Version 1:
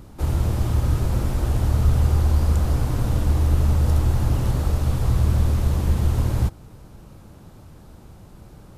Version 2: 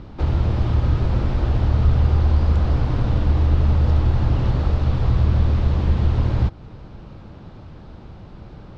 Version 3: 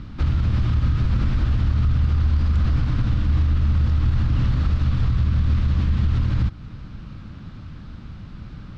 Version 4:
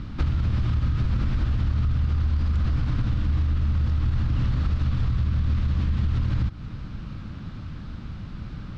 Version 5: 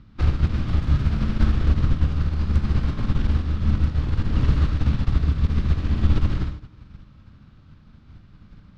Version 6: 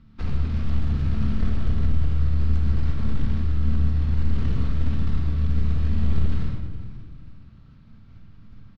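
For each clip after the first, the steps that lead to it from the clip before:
low-pass filter 4,400 Hz 24 dB per octave; in parallel at −2 dB: downward compressor, threshold −27 dBFS, peak gain reduction 14 dB
flat-topped bell 570 Hz −11.5 dB; brickwall limiter −15.5 dBFS, peak gain reduction 9.5 dB; level +3 dB
downward compressor, threshold −21 dBFS, peak gain reduction 6 dB; level +1.5 dB
wavefolder on the positive side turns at −19 dBFS; four-comb reverb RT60 1.6 s, combs from 29 ms, DRR 2 dB; expander for the loud parts 2.5 to 1, over −33 dBFS; level +7.5 dB
soft clipping −17 dBFS, distortion −11 dB; repeating echo 415 ms, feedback 35%, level −17 dB; rectangular room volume 950 cubic metres, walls mixed, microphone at 1.6 metres; level −6 dB

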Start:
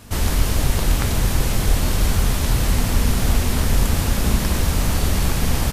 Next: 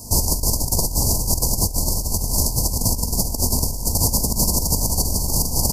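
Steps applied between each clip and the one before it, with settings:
Chebyshev band-stop filter 1,000–4,600 Hz, order 5
high-shelf EQ 2,100 Hz +11 dB
compressor whose output falls as the input rises −19 dBFS, ratio −0.5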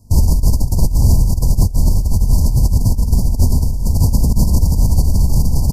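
bass and treble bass +14 dB, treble −7 dB
boost into a limiter +3 dB
expander for the loud parts 2.5 to 1, over −19 dBFS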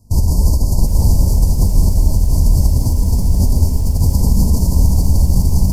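reverb whose tail is shaped and stops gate 260 ms rising, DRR 0 dB
feedback echo at a low word length 749 ms, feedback 35%, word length 5 bits, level −14 dB
level −2.5 dB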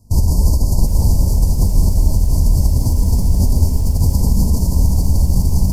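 speech leveller
level −1 dB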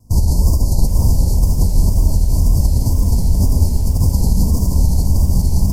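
tape wow and flutter 88 cents

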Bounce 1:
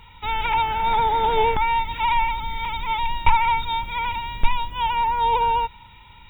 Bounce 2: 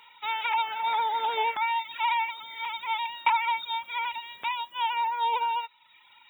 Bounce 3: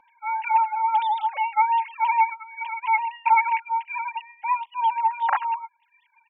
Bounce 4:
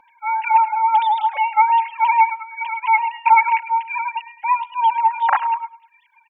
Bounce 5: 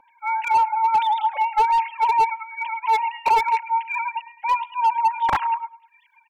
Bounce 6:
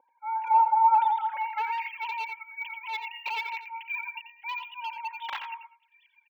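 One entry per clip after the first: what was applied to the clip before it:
reverb reduction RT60 0.9 s; Bessel high-pass filter 840 Hz, order 2; level −2 dB
three sine waves on the formant tracks; comb filter 3.7 ms, depth 76%; level +8 dB
repeating echo 104 ms, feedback 35%, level −19 dB; level +5.5 dB
two-band tremolo in antiphase 1.4 Hz, depth 50%, crossover 960 Hz; slew-rate limiting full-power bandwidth 190 Hz
band-pass filter sweep 480 Hz → 3,100 Hz, 0:00.05–0:02.17; single-tap delay 87 ms −10 dB; linearly interpolated sample-rate reduction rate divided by 2×

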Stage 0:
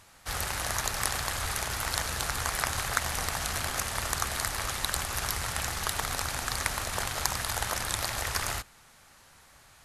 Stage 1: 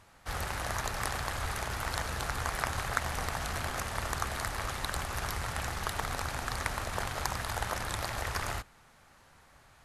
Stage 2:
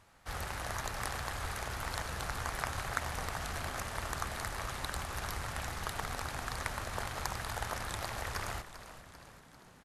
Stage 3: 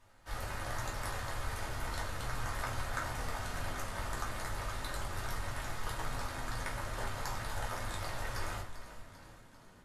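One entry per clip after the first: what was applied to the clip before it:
high-shelf EQ 2,800 Hz −10 dB
echo with shifted repeats 394 ms, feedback 59%, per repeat −73 Hz, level −13 dB; level −4 dB
rectangular room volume 170 cubic metres, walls furnished, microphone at 2.7 metres; level −7.5 dB

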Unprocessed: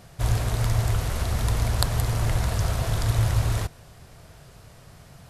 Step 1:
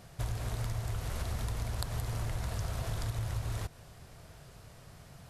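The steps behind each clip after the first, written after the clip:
downward compressor, threshold −27 dBFS, peak gain reduction 10.5 dB
level −4.5 dB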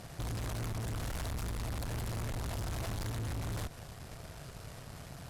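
tube saturation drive 44 dB, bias 0.7
level +9 dB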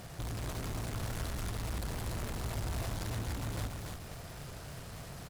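single-tap delay 287 ms −3.5 dB
in parallel at −9 dB: wrap-around overflow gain 41.5 dB
on the sum: level −1 dB

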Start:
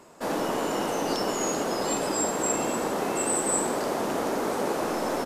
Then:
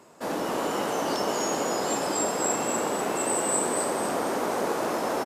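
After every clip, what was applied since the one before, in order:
high-pass filter 69 Hz
on a send: echo with shifted repeats 247 ms, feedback 41%, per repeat +140 Hz, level −4 dB
on the sum: level −1.5 dB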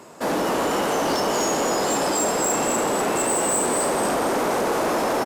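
in parallel at 0 dB: brickwall limiter −20.5 dBFS, peak gain reduction 7.5 dB
on the sum: soft clipping −19.5 dBFS, distortion −14 dB
level +3 dB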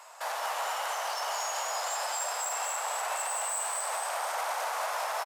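Butterworth high-pass 680 Hz 36 dB per octave
brickwall limiter −22.5 dBFS, peak gain reduction 10 dB
single-tap delay 206 ms −6 dB
level −2.5 dB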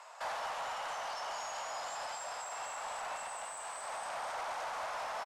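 soft clipping −28.5 dBFS, distortion −16 dB
speech leveller 0.5 s
high-frequency loss of the air 65 metres
level −4.5 dB

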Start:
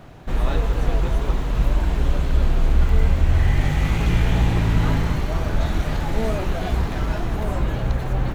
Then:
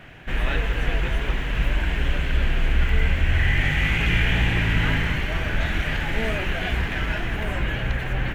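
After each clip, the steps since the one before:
flat-topped bell 2,200 Hz +13 dB 1.3 octaves
level −3.5 dB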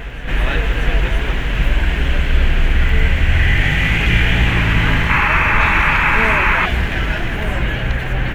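sound drawn into the spectrogram noise, 0:05.09–0:06.66, 810–2,700 Hz −22 dBFS
backwards echo 633 ms −11 dB
level +6 dB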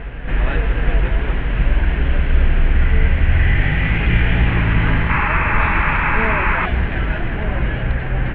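high-frequency loss of the air 480 metres

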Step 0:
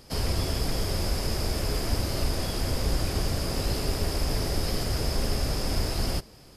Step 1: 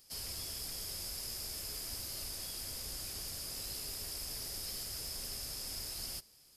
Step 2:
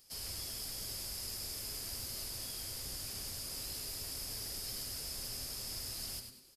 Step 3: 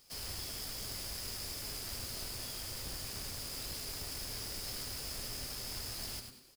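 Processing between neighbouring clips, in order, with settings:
first-order pre-emphasis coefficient 0.9; level −4 dB
echo with shifted repeats 100 ms, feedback 37%, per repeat −140 Hz, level −7 dB; level −1 dB
each half-wave held at its own peak; level −3 dB

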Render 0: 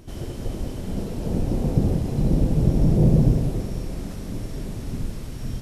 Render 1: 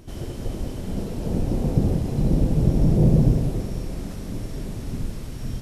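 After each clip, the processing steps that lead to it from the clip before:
no processing that can be heard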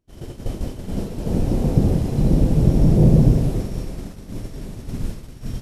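downward expander −24 dBFS
level +3.5 dB

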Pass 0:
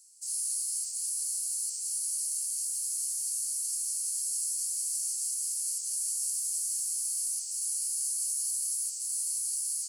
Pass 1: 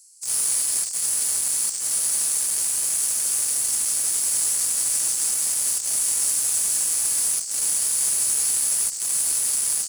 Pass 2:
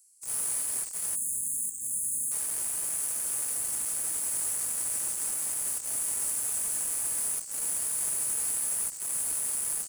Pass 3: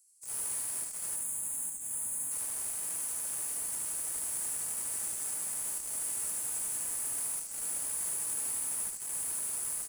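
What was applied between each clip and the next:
parametric band 2,000 Hz +6 dB 0.22 octaves; in parallel at −4.5 dB: bit reduction 5 bits; on the sum: level +6 dB
parametric band 5,000 Hz −13.5 dB 1.6 octaves; gain on a spectral selection 0:01.16–0:02.32, 320–6,300 Hz −29 dB; level −3 dB
in parallel at −9.5 dB: asymmetric clip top −40.5 dBFS; on the sum: single-tap delay 75 ms −4.5 dB; level −7.5 dB

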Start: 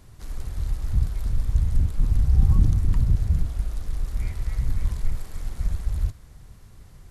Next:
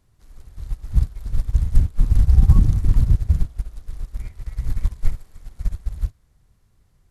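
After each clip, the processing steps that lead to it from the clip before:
boost into a limiter +9.5 dB
expander for the loud parts 2.5 to 1, over −19 dBFS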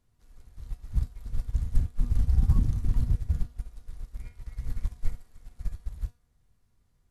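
tuned comb filter 240 Hz, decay 0.34 s, harmonics all, mix 70%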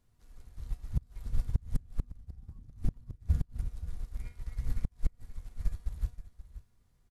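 single-tap delay 528 ms −14 dB
gate with flip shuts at −16 dBFS, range −28 dB

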